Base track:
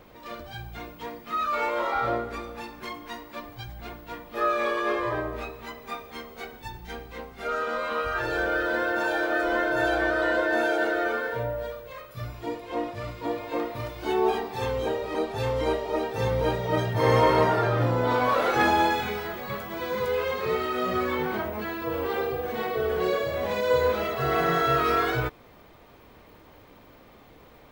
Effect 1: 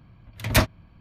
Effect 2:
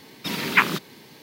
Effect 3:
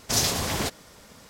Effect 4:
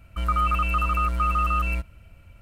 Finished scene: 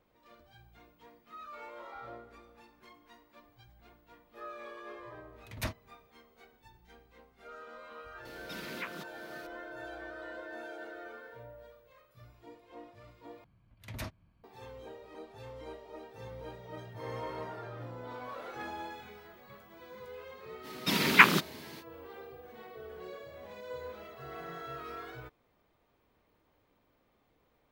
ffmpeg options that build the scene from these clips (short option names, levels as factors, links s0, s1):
-filter_complex "[1:a]asplit=2[s0][s1];[2:a]asplit=2[s2][s3];[0:a]volume=0.1[s4];[s2]acompressor=threshold=0.01:ratio=2:attack=0.14:release=369:knee=1:detection=peak[s5];[s1]alimiter=limit=0.168:level=0:latency=1:release=55[s6];[s4]asplit=2[s7][s8];[s7]atrim=end=13.444[s9];[s6]atrim=end=1,asetpts=PTS-STARTPTS,volume=0.178[s10];[s8]atrim=start=14.436[s11];[s0]atrim=end=1,asetpts=PTS-STARTPTS,volume=0.133,afade=t=in:d=0.004:c=hsin,afade=t=out:st=0.996:d=0.004:c=hsin,adelay=5070[s12];[s5]atrim=end=1.22,asetpts=PTS-STARTPTS,volume=0.531,afade=t=in:d=0.004:c=hsin,afade=t=out:st=1.216:d=0.004:c=hsin,adelay=8250[s13];[s3]atrim=end=1.22,asetpts=PTS-STARTPTS,volume=0.944,afade=t=in:d=0.05,afade=t=out:st=1.17:d=0.05,adelay=20620[s14];[s9][s10]acrossfade=d=0.004:c1=hsin:c2=hsin[s15];[s15][s11]acrossfade=d=0.004:c1=hsin:c2=hsin[s16];[s16][s12][s13][s14]amix=inputs=4:normalize=0"